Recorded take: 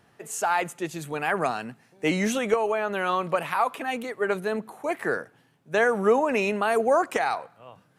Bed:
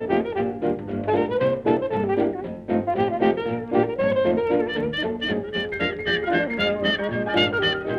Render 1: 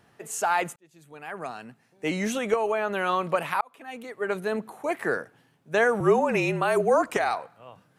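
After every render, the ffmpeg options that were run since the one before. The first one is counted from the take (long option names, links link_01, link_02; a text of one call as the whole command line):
ffmpeg -i in.wav -filter_complex "[0:a]asettb=1/sr,asplit=3[link_01][link_02][link_03];[link_01]atrim=end=6.004[link_04];[link_02]atrim=start=6:end=7.31,asetpts=PTS-STARTPTS,afade=type=in:duration=0.004:curve=qsin,afade=type=out:start_time=1.306:duration=0.004:curve=qsin,afreqshift=-42[link_05];[link_03]atrim=start=7.306[link_06];[link_04][link_05]acrossfade=duration=0.004:curve1=hsin:curve2=qsin[link_07];[link_07][link_06]acrossfade=duration=0.004:curve1=qsin:curve2=hsin,asplit=3[link_08][link_09][link_10];[link_08]atrim=end=0.76,asetpts=PTS-STARTPTS,afade=type=out:start_time=0.756:duration=0.004:curve=hsin[link_11];[link_09]atrim=start=0.76:end=3.61,asetpts=PTS-STARTPTS,afade=type=in:duration=2.06,afade=type=out:start_time=2.846:duration=0.004:curve=hsin[link_12];[link_10]atrim=start=3.61,asetpts=PTS-STARTPTS,afade=type=in:duration=0.92[link_13];[link_11][link_12][link_13]concat=n=3:v=0:a=1" out.wav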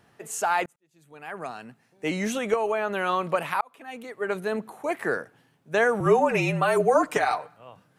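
ffmpeg -i in.wav -filter_complex "[0:a]asettb=1/sr,asplit=3[link_01][link_02][link_03];[link_01]atrim=end=6.054[link_04];[link_02]atrim=start=6.05:end=7.56,asetpts=PTS-STARTPTS,afade=type=in:duration=0.004:curve=qsin,afade=type=out:start_time=1.506:duration=0.004:curve=qsin,aecho=1:1:6.7:0.65,atrim=end_sample=66591[link_05];[link_03]atrim=start=7.556[link_06];[link_04][link_05]acrossfade=duration=0.004:curve1=hsin:curve2=qsin[link_07];[link_07][link_06]acrossfade=duration=0.004:curve1=qsin:curve2=hsin,asplit=2[link_08][link_09];[link_08]atrim=end=0.66,asetpts=PTS-STARTPTS,afade=type=out:start_time=0.656:duration=0.004:curve=hsin[link_10];[link_09]atrim=start=0.66,asetpts=PTS-STARTPTS,afade=type=in:duration=0.62[link_11];[link_10][link_11]concat=n=2:v=0:a=1" out.wav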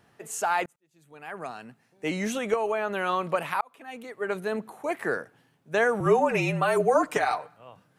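ffmpeg -i in.wav -af "volume=-1.5dB" out.wav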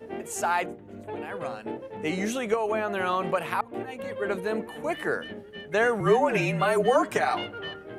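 ffmpeg -i in.wav -i bed.wav -filter_complex "[1:a]volume=-15dB[link_01];[0:a][link_01]amix=inputs=2:normalize=0" out.wav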